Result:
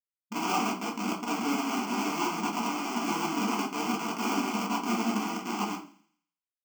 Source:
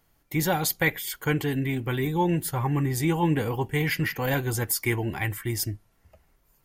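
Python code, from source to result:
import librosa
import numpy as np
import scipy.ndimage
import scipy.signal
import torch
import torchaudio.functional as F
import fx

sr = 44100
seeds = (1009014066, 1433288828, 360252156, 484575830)

p1 = fx.vibrato(x, sr, rate_hz=14.0, depth_cents=55.0)
p2 = fx.sample_hold(p1, sr, seeds[0], rate_hz=1900.0, jitter_pct=20)
p3 = fx.schmitt(p2, sr, flips_db=-35.5)
p4 = fx.quant_companded(p3, sr, bits=4)
p5 = fx.brickwall_highpass(p4, sr, low_hz=190.0)
p6 = fx.fixed_phaser(p5, sr, hz=2600.0, stages=8)
p7 = p6 + fx.echo_thinned(p6, sr, ms=83, feedback_pct=48, hz=570.0, wet_db=-18.0, dry=0)
y = fx.room_shoebox(p7, sr, seeds[1], volume_m3=170.0, walls='furnished', distance_m=1.8)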